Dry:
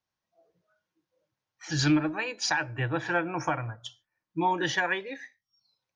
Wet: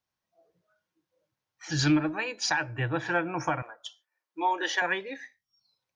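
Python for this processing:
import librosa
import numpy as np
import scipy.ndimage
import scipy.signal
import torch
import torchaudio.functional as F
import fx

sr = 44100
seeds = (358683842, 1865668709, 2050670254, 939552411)

y = fx.highpass(x, sr, hz=390.0, slope=24, at=(3.62, 4.82))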